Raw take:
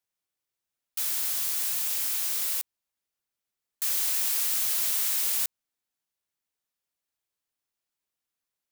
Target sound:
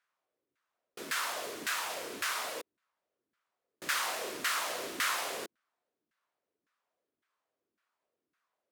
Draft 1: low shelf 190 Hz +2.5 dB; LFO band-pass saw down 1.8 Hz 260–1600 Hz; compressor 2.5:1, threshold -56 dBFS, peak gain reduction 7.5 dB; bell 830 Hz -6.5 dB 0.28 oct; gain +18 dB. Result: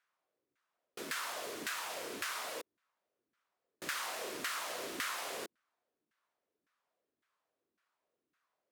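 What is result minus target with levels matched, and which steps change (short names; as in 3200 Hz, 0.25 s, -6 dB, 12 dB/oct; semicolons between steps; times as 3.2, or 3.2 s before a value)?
compressor: peak gain reduction +7.5 dB
remove: compressor 2.5:1, threshold -56 dBFS, peak gain reduction 7.5 dB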